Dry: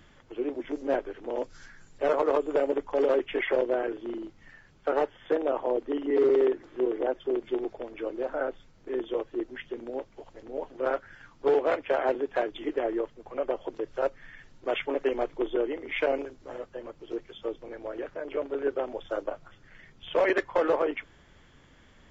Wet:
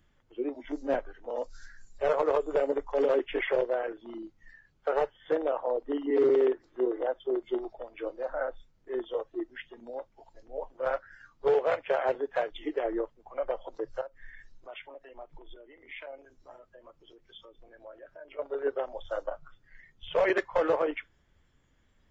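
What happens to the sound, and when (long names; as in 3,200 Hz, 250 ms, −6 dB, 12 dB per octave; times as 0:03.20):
0:14.01–0:18.39: downward compressor 3 to 1, threshold −41 dBFS
whole clip: noise reduction from a noise print of the clip's start 13 dB; low-shelf EQ 110 Hz +7.5 dB; level −1.5 dB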